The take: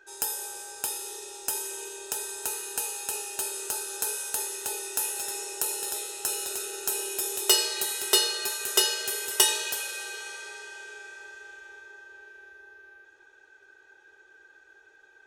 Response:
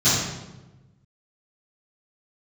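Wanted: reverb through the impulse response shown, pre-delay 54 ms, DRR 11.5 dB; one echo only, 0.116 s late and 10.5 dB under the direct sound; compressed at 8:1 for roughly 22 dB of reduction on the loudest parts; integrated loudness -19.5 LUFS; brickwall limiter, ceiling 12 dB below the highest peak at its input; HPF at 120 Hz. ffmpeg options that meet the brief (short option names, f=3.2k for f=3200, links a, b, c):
-filter_complex "[0:a]highpass=120,acompressor=threshold=-41dB:ratio=8,alimiter=level_in=7dB:limit=-24dB:level=0:latency=1,volume=-7dB,aecho=1:1:116:0.299,asplit=2[a][b];[1:a]atrim=start_sample=2205,adelay=54[c];[b][c]afir=irnorm=-1:irlink=0,volume=-30dB[d];[a][d]amix=inputs=2:normalize=0,volume=23dB"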